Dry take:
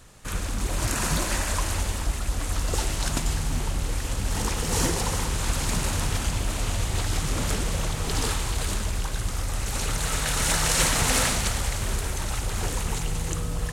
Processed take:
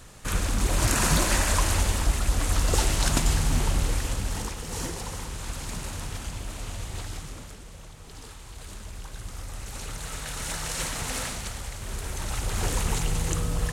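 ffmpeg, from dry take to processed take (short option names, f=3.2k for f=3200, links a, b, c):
-af "volume=22.5dB,afade=t=out:st=3.78:d=0.77:silence=0.266073,afade=t=out:st=7.01:d=0.51:silence=0.334965,afade=t=in:st=8.34:d=1.06:silence=0.354813,afade=t=in:st=11.81:d=0.96:silence=0.298538"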